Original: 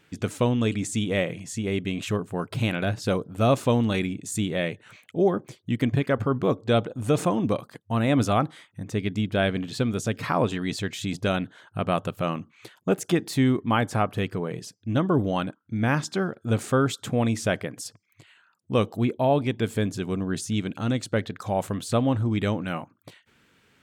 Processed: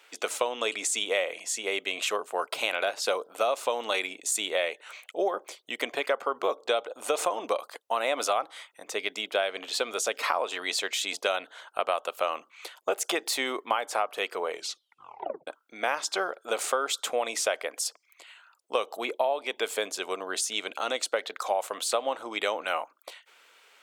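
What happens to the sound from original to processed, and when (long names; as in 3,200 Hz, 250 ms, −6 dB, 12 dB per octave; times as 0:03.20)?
0:14.51: tape stop 0.96 s
whole clip: high-pass filter 530 Hz 24 dB per octave; parametric band 1,700 Hz −6 dB 0.27 octaves; downward compressor 10 to 1, threshold −29 dBFS; level +6.5 dB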